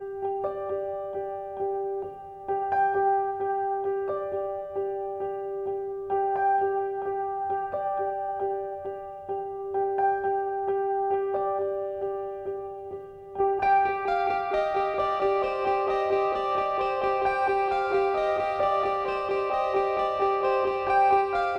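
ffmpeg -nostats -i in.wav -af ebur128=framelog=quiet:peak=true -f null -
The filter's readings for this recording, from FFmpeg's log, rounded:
Integrated loudness:
  I:         -27.2 LUFS
  Threshold: -37.3 LUFS
Loudness range:
  LRA:         4.0 LU
  Threshold: -47.4 LUFS
  LRA low:   -29.5 LUFS
  LRA high:  -25.5 LUFS
True peak:
  Peak:      -11.7 dBFS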